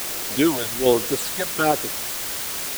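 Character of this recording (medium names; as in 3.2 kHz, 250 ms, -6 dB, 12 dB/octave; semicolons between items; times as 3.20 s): random-step tremolo; phasing stages 8, 1.2 Hz, lowest notch 310–4000 Hz; a quantiser's noise floor 6-bit, dither triangular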